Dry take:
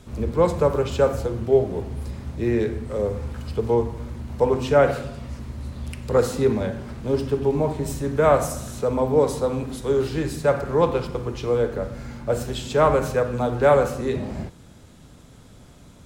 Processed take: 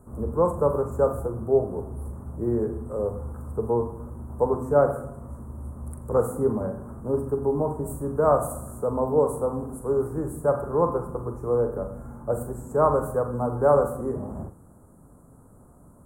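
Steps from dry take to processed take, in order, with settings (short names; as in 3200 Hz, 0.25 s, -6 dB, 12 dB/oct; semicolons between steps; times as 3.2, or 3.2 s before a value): elliptic band-stop 1200–9000 Hz, stop band 80 dB; low shelf 210 Hz -4.5 dB; flutter echo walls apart 7.1 m, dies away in 0.24 s; gain -1.5 dB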